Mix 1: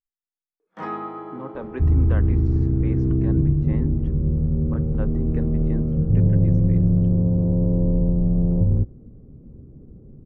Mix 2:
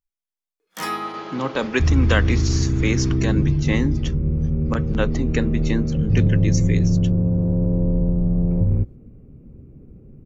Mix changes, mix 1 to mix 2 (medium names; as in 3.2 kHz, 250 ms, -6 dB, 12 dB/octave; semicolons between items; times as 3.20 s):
speech +10.0 dB; master: remove low-pass 1.1 kHz 12 dB/octave